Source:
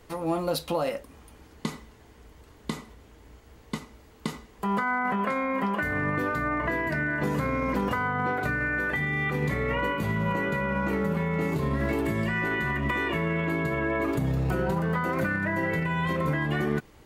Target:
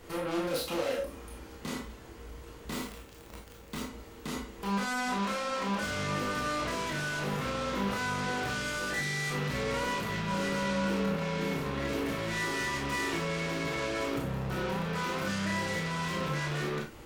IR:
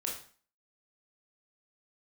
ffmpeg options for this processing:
-filter_complex "[0:a]asoftclip=type=tanh:threshold=0.0531,aeval=exprs='0.0531*(cos(1*acos(clip(val(0)/0.0531,-1,1)))-cos(1*PI/2))+0.00119*(cos(3*acos(clip(val(0)/0.0531,-1,1)))-cos(3*PI/2))+0.015*(cos(5*acos(clip(val(0)/0.0531,-1,1)))-cos(5*PI/2))':c=same,asettb=1/sr,asplit=3[s0][s1][s2];[s0]atrim=end=2.704[s3];[s1]atrim=start=2.7:end=3.8,asetpts=PTS-STARTPTS,afade=t=in:d=0.004:c=qsin,afade=t=out:st=1.096:d=0.004:c=qsin,acrusher=bits=7:dc=4:mix=0:aa=0.000001[s4];[s2]atrim=start=3.796[s5];[s3][s4]acrossfade=d=0.004:c1=hsin:c2=qsin[s6];[s6][s5]acrossfade=d=0.004:c1=qsin:c2=hsin[s7];[1:a]atrim=start_sample=2205,atrim=end_sample=4410[s8];[s7][s8]afir=irnorm=-1:irlink=0,volume=0.668"

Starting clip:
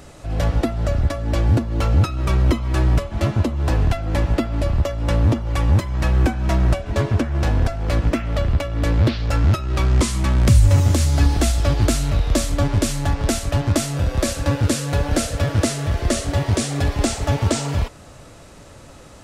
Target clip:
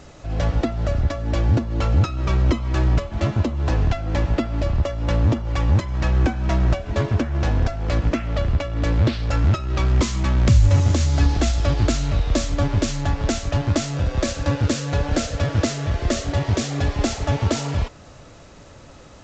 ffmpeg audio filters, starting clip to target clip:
-af "volume=0.841" -ar 16000 -c:a g722

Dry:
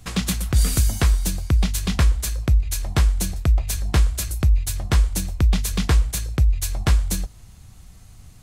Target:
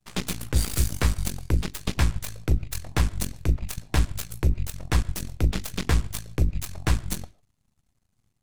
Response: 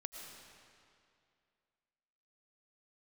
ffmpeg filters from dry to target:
-filter_complex "[0:a]bandreject=f=50:t=h:w=6,bandreject=f=100:t=h:w=6,bandreject=f=150:t=h:w=6,bandreject=f=200:t=h:w=6,aeval=exprs='0.422*(cos(1*acos(clip(val(0)/0.422,-1,1)))-cos(1*PI/2))+0.119*(cos(4*acos(clip(val(0)/0.422,-1,1)))-cos(4*PI/2))+0.0944*(cos(6*acos(clip(val(0)/0.422,-1,1)))-cos(6*PI/2))+0.0596*(cos(7*acos(clip(val(0)/0.422,-1,1)))-cos(7*PI/2))+0.075*(cos(8*acos(clip(val(0)/0.422,-1,1)))-cos(8*PI/2))':c=same,asplit=2[s0][s1];[1:a]atrim=start_sample=2205,afade=t=out:st=0.21:d=0.01,atrim=end_sample=9702,lowpass=4000[s2];[s1][s2]afir=irnorm=-1:irlink=0,volume=0.316[s3];[s0][s3]amix=inputs=2:normalize=0,volume=0.501"

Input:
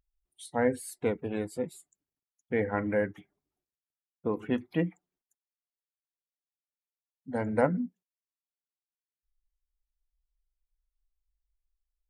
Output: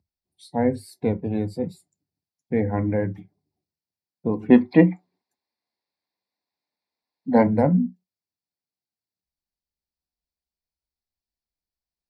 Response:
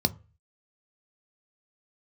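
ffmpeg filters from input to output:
-filter_complex "[0:a]asettb=1/sr,asplit=3[s0][s1][s2];[s0]atrim=end=4.504[s3];[s1]atrim=start=4.5:end=7.47,asetpts=PTS-STARTPTS,afade=t=in:d=0.004:c=qsin,afade=t=out:st=2.966:d=0.004:c=qsin,equalizer=f=125:t=o:w=1:g=-6,equalizer=f=250:t=o:w=1:g=8,equalizer=f=500:t=o:w=1:g=6,equalizer=f=1000:t=o:w=1:g=12,equalizer=f=2000:t=o:w=1:g=10,equalizer=f=4000:t=o:w=1:g=9,equalizer=f=8000:t=o:w=1:g=-5[s4];[s2]atrim=start=7.466[s5];[s3][s4]acrossfade=d=0.004:c1=hsin:c2=qsin[s6];[s6][s5]acrossfade=d=0.004:c1=qsin:c2=hsin[s7];[1:a]atrim=start_sample=2205,atrim=end_sample=3087[s8];[s7][s8]afir=irnorm=-1:irlink=0,volume=0.376"

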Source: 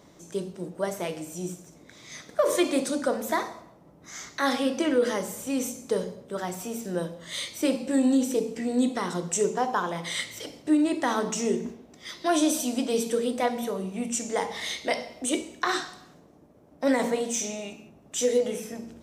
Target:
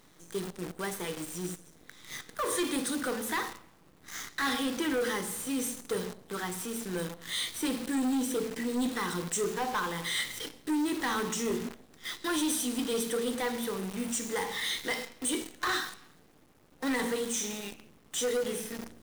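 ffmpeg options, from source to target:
-af "superequalizer=8b=0.251:10b=1.58:11b=2:13b=1.78:16b=2.24,asoftclip=type=tanh:threshold=0.075,acrusher=bits=7:dc=4:mix=0:aa=0.000001,volume=0.75"

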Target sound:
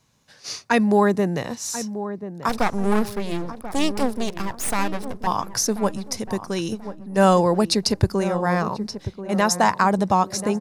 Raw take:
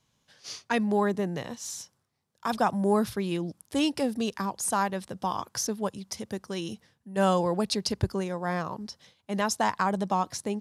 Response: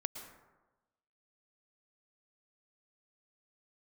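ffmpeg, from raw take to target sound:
-filter_complex "[0:a]equalizer=f=3200:w=7.5:g=-9,asettb=1/sr,asplit=3[s0][s1][s2];[s0]atrim=end=2.494[s3];[s1]atrim=start=2.49:end=5.27,asetpts=PTS-STARTPTS,afade=t=in:d=0.004:c=qsin,afade=t=out:st=2.776:d=0.004:c=qsin,aeval=exprs='max(val(0),0)':c=same[s4];[s2]atrim=start=5.266[s5];[s3][s4]acrossfade=d=0.004:c1=hsin:c2=qsin[s6];[s6][s5]acrossfade=d=0.004:c1=qsin:c2=hsin,asplit=2[s7][s8];[s8]adelay=1036,lowpass=f=1000:p=1,volume=0.282,asplit=2[s9][s10];[s10]adelay=1036,lowpass=f=1000:p=1,volume=0.46,asplit=2[s11][s12];[s12]adelay=1036,lowpass=f=1000:p=1,volume=0.46,asplit=2[s13][s14];[s14]adelay=1036,lowpass=f=1000:p=1,volume=0.46,asplit=2[s15][s16];[s16]adelay=1036,lowpass=f=1000:p=1,volume=0.46[s17];[s7][s9][s11][s13][s15][s17]amix=inputs=6:normalize=0,volume=2.51"

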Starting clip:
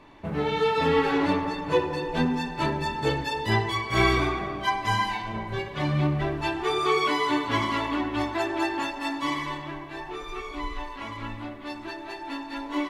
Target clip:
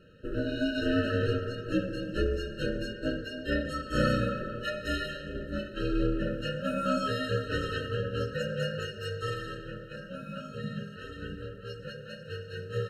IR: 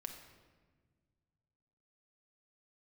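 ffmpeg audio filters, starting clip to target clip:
-filter_complex "[0:a]aeval=exprs='val(0)*sin(2*PI*180*n/s)':c=same,asettb=1/sr,asplit=3[s0][s1][s2];[s0]atrim=end=2.934[s3];[s1]atrim=start=2.93:end=3.65,asetpts=PTS-STARTPTS,afade=t=in:d=0.004:c=qsin,afade=t=out:st=0.716:d=0.004:c=qsin,bass=f=250:g=-4,treble=f=4000:g=-8[s4];[s2]atrim=start=3.646[s5];[s3][s4]acrossfade=d=0.004:c1=hsin:c2=qsin[s6];[s6][s5]acrossfade=d=0.004:c1=qsin:c2=hsin,afftfilt=real='re*eq(mod(floor(b*sr/1024/630),2),0)':imag='im*eq(mod(floor(b*sr/1024/630),2),0)':win_size=1024:overlap=0.75"

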